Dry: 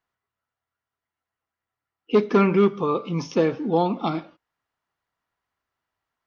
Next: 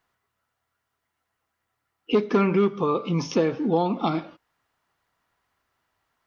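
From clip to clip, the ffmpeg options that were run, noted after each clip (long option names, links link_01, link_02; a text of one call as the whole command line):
ffmpeg -i in.wav -af "acompressor=threshold=-35dB:ratio=2,volume=8.5dB" out.wav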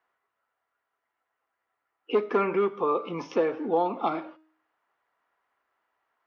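ffmpeg -i in.wav -filter_complex "[0:a]acrossover=split=320 2600:gain=0.1 1 0.158[link_01][link_02][link_03];[link_01][link_02][link_03]amix=inputs=3:normalize=0,bandreject=frequency=314.6:width_type=h:width=4,bandreject=frequency=629.2:width_type=h:width=4,bandreject=frequency=943.8:width_type=h:width=4,bandreject=frequency=1258.4:width_type=h:width=4,bandreject=frequency=1573:width_type=h:width=4,bandreject=frequency=1887.6:width_type=h:width=4,bandreject=frequency=2202.2:width_type=h:width=4,bandreject=frequency=2516.8:width_type=h:width=4,bandreject=frequency=2831.4:width_type=h:width=4,bandreject=frequency=3146:width_type=h:width=4,bandreject=frequency=3460.6:width_type=h:width=4,bandreject=frequency=3775.2:width_type=h:width=4,bandreject=frequency=4089.8:width_type=h:width=4,bandreject=frequency=4404.4:width_type=h:width=4,bandreject=frequency=4719:width_type=h:width=4,bandreject=frequency=5033.6:width_type=h:width=4,bandreject=frequency=5348.2:width_type=h:width=4,bandreject=frequency=5662.8:width_type=h:width=4,bandreject=frequency=5977.4:width_type=h:width=4,bandreject=frequency=6292:width_type=h:width=4,bandreject=frequency=6606.6:width_type=h:width=4,bandreject=frequency=6921.2:width_type=h:width=4,bandreject=frequency=7235.8:width_type=h:width=4,bandreject=frequency=7550.4:width_type=h:width=4,bandreject=frequency=7865:width_type=h:width=4,bandreject=frequency=8179.6:width_type=h:width=4,bandreject=frequency=8494.2:width_type=h:width=4,bandreject=frequency=8808.8:width_type=h:width=4,bandreject=frequency=9123.4:width_type=h:width=4,bandreject=frequency=9438:width_type=h:width=4,bandreject=frequency=9752.6:width_type=h:width=4,bandreject=frequency=10067.2:width_type=h:width=4,bandreject=frequency=10381.8:width_type=h:width=4,bandreject=frequency=10696.4:width_type=h:width=4,bandreject=frequency=11011:width_type=h:width=4,bandreject=frequency=11325.6:width_type=h:width=4,bandreject=frequency=11640.2:width_type=h:width=4" out.wav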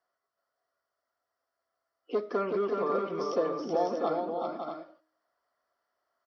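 ffmpeg -i in.wav -filter_complex "[0:a]superequalizer=8b=2:9b=0.631:11b=0.708:12b=0.355:14b=3.16,asplit=2[link_01][link_02];[link_02]aecho=0:1:376|555|639:0.596|0.447|0.376[link_03];[link_01][link_03]amix=inputs=2:normalize=0,volume=-6dB" out.wav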